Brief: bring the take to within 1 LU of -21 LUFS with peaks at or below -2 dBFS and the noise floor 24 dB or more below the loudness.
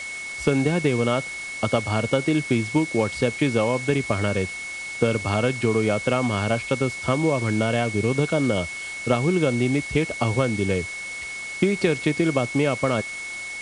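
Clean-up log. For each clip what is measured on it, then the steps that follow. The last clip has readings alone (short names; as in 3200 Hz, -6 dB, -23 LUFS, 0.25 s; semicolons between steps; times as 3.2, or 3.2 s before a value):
steady tone 2200 Hz; tone level -31 dBFS; noise floor -33 dBFS; noise floor target -48 dBFS; loudness -23.5 LUFS; peak -6.0 dBFS; loudness target -21.0 LUFS
-> notch 2200 Hz, Q 30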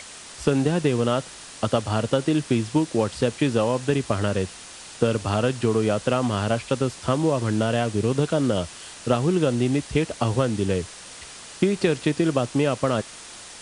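steady tone none; noise floor -42 dBFS; noise floor target -48 dBFS
-> denoiser 6 dB, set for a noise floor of -42 dBFS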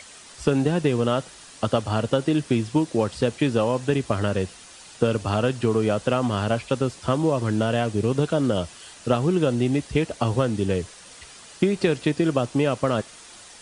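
noise floor -46 dBFS; noise floor target -48 dBFS
-> denoiser 6 dB, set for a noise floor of -46 dBFS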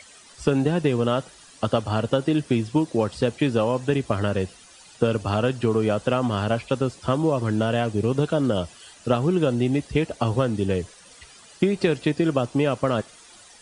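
noise floor -49 dBFS; loudness -23.5 LUFS; peak -6.5 dBFS; loudness target -21.0 LUFS
-> gain +2.5 dB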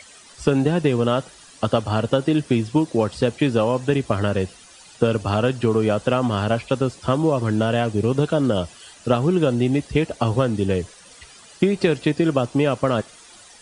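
loudness -21.0 LUFS; peak -4.0 dBFS; noise floor -47 dBFS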